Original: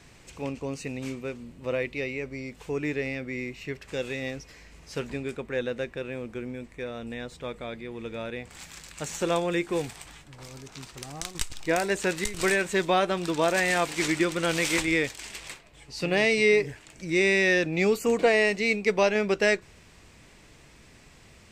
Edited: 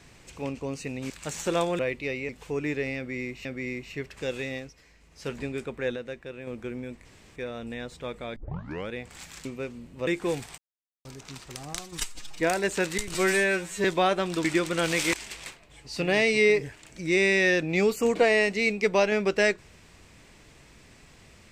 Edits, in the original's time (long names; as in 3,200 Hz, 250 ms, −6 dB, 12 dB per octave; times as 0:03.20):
0:01.10–0:01.72: swap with 0:08.85–0:09.54
0:02.22–0:02.48: remove
0:03.16–0:03.64: repeat, 2 plays
0:04.17–0:05.07: duck −8 dB, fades 0.27 s
0:05.67–0:06.18: clip gain −5.5 dB
0:06.76: splice in room tone 0.31 s
0:07.76: tape start 0.54 s
0:10.05–0:10.52: silence
0:11.26–0:11.67: time-stretch 1.5×
0:12.41–0:12.76: time-stretch 2×
0:13.36–0:14.10: remove
0:14.79–0:15.17: remove